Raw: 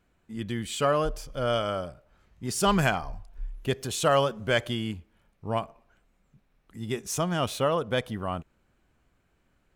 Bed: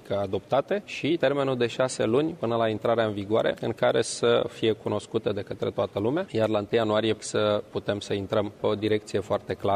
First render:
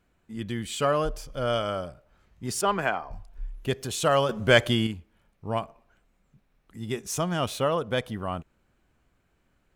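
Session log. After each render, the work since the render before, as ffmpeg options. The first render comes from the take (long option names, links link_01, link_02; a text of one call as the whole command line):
ffmpeg -i in.wav -filter_complex "[0:a]asettb=1/sr,asplit=3[link_01][link_02][link_03];[link_01]atrim=end=2.614[link_04];[link_02]atrim=start=2.61:end=3.11,asetpts=PTS-STARTPTS,afade=type=in:duration=0.004:curve=qsin,afade=type=out:start_time=0.496:duration=0.004:curve=qsin,acrossover=split=270 2700:gain=0.178 1 0.178[link_05][link_06][link_07];[link_05][link_06][link_07]amix=inputs=3:normalize=0[link_08];[link_03]atrim=start=3.106[link_09];[link_04][link_08]acrossfade=duration=0.004:curve1=hsin:curve2=qsin[link_10];[link_10][link_09]acrossfade=duration=0.004:curve1=qsin:curve2=hsin,asplit=3[link_11][link_12][link_13];[link_11]atrim=end=4.292[link_14];[link_12]atrim=start=4.288:end=4.872,asetpts=PTS-STARTPTS,volume=6.5dB[link_15];[link_13]atrim=start=4.868[link_16];[link_14][link_15]acrossfade=duration=0.004:curve1=hsin:curve2=hsin[link_17];[link_17][link_16]acrossfade=duration=0.004:curve1=hsin:curve2=hsin" out.wav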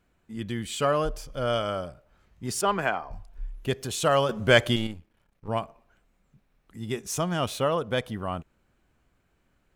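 ffmpeg -i in.wav -filter_complex "[0:a]asettb=1/sr,asplit=3[link_01][link_02][link_03];[link_01]atrim=end=4.764[link_04];[link_02]atrim=start=4.76:end=5.48,asetpts=PTS-STARTPTS,afade=type=in:duration=0.004:curve=qsin,afade=type=out:start_time=0.716:duration=0.004:curve=qsin,aeval=exprs='if(lt(val(0),0),0.251*val(0),val(0))':channel_layout=same[link_05];[link_03]atrim=start=5.476[link_06];[link_04][link_05]acrossfade=duration=0.004:curve1=hsin:curve2=qsin[link_07];[link_07][link_06]acrossfade=duration=0.004:curve1=qsin:curve2=hsin" out.wav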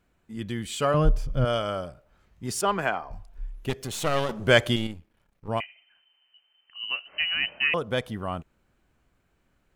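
ffmpeg -i in.wav -filter_complex "[0:a]asettb=1/sr,asplit=3[link_01][link_02][link_03];[link_01]atrim=end=0.944[link_04];[link_02]atrim=start=0.94:end=1.45,asetpts=PTS-STARTPTS,afade=type=in:duration=0.004:curve=qsin,afade=type=out:start_time=0.506:duration=0.004:curve=qsin,bass=frequency=250:gain=14,treble=frequency=4000:gain=-7[link_05];[link_03]atrim=start=1.446[link_06];[link_04][link_05]acrossfade=duration=0.004:curve1=hsin:curve2=qsin[link_07];[link_07][link_06]acrossfade=duration=0.004:curve1=qsin:curve2=hsin,asettb=1/sr,asplit=3[link_08][link_09][link_10];[link_08]atrim=end=3.694[link_11];[link_09]atrim=start=3.69:end=4.46,asetpts=PTS-STARTPTS,afade=type=in:duration=0.004:curve=qsin,afade=type=out:start_time=0.766:duration=0.004:curve=qsin,aeval=exprs='clip(val(0),-1,0.0168)':channel_layout=same[link_12];[link_10]atrim=start=4.456[link_13];[link_11][link_12]acrossfade=duration=0.004:curve1=hsin:curve2=qsin[link_14];[link_14][link_13]acrossfade=duration=0.004:curve1=qsin:curve2=hsin,asettb=1/sr,asplit=3[link_15][link_16][link_17];[link_15]atrim=end=5.604[link_18];[link_16]atrim=start=5.6:end=7.74,asetpts=PTS-STARTPTS,afade=type=in:duration=0.004:curve=qsin,afade=type=out:start_time=2.136:duration=0.004:curve=qsin,lowpass=frequency=2600:width_type=q:width=0.5098,lowpass=frequency=2600:width_type=q:width=0.6013,lowpass=frequency=2600:width_type=q:width=0.9,lowpass=frequency=2600:width_type=q:width=2.563,afreqshift=-3100[link_19];[link_17]atrim=start=7.736[link_20];[link_18][link_19]acrossfade=duration=0.004:curve1=hsin:curve2=qsin[link_21];[link_21][link_20]acrossfade=duration=0.004:curve1=qsin:curve2=hsin" out.wav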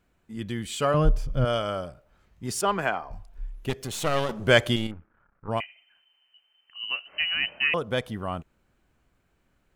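ffmpeg -i in.wav -filter_complex "[0:a]asplit=3[link_01][link_02][link_03];[link_01]afade=type=out:start_time=4.9:duration=0.02[link_04];[link_02]lowpass=frequency=1400:width_type=q:width=4.7,afade=type=in:start_time=4.9:duration=0.02,afade=type=out:start_time=5.49:duration=0.02[link_05];[link_03]afade=type=in:start_time=5.49:duration=0.02[link_06];[link_04][link_05][link_06]amix=inputs=3:normalize=0" out.wav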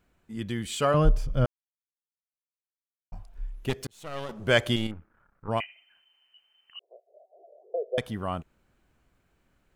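ffmpeg -i in.wav -filter_complex "[0:a]asettb=1/sr,asplit=3[link_01][link_02][link_03];[link_01]atrim=end=6.794[link_04];[link_02]atrim=start=6.79:end=7.98,asetpts=PTS-STARTPTS,afade=type=in:duration=0.004:curve=qsin,afade=type=out:start_time=1.186:duration=0.004:curve=qsin,asuperpass=centerf=520:order=12:qfactor=1.6[link_05];[link_03]atrim=start=7.976[link_06];[link_04][link_05]acrossfade=duration=0.004:curve1=hsin:curve2=qsin[link_07];[link_07][link_06]acrossfade=duration=0.004:curve1=qsin:curve2=hsin,asplit=4[link_08][link_09][link_10][link_11];[link_08]atrim=end=1.46,asetpts=PTS-STARTPTS,afade=type=out:start_time=1.456:duration=0.004:curve=hsin[link_12];[link_09]atrim=start=1.46:end=3.12,asetpts=PTS-STARTPTS,volume=0[link_13];[link_10]atrim=start=3.12:end=3.87,asetpts=PTS-STARTPTS,afade=type=in:duration=0.004:curve=hsin,afade=type=out:start_time=0.746:duration=0.004:curve=hsin[link_14];[link_11]atrim=start=3.87,asetpts=PTS-STARTPTS,afade=type=in:duration=1[link_15];[link_12][link_13][link_14][link_15]concat=n=4:v=0:a=1" out.wav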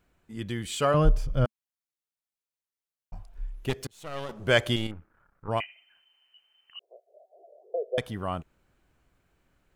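ffmpeg -i in.wav -af "equalizer=frequency=220:width=5.7:gain=-4" out.wav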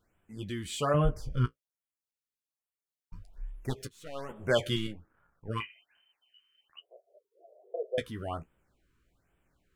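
ffmpeg -i in.wav -af "flanger=delay=8.7:depth=9.9:regen=-32:speed=0.27:shape=triangular,afftfilt=real='re*(1-between(b*sr/1024,640*pow(5300/640,0.5+0.5*sin(2*PI*1.2*pts/sr))/1.41,640*pow(5300/640,0.5+0.5*sin(2*PI*1.2*pts/sr))*1.41))':imag='im*(1-between(b*sr/1024,640*pow(5300/640,0.5+0.5*sin(2*PI*1.2*pts/sr))/1.41,640*pow(5300/640,0.5+0.5*sin(2*PI*1.2*pts/sr))*1.41))':win_size=1024:overlap=0.75" out.wav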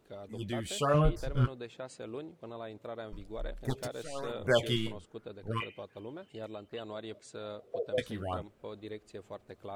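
ffmpeg -i in.wav -i bed.wav -filter_complex "[1:a]volume=-18.5dB[link_01];[0:a][link_01]amix=inputs=2:normalize=0" out.wav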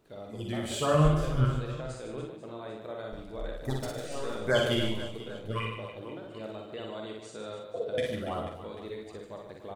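ffmpeg -i in.wav -filter_complex "[0:a]asplit=2[link_01][link_02];[link_02]adelay=46,volume=-6.5dB[link_03];[link_01][link_03]amix=inputs=2:normalize=0,aecho=1:1:60|150|285|487.5|791.2:0.631|0.398|0.251|0.158|0.1" out.wav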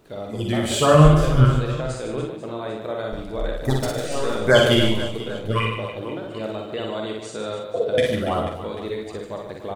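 ffmpeg -i in.wav -af "volume=11dB,alimiter=limit=-2dB:level=0:latency=1" out.wav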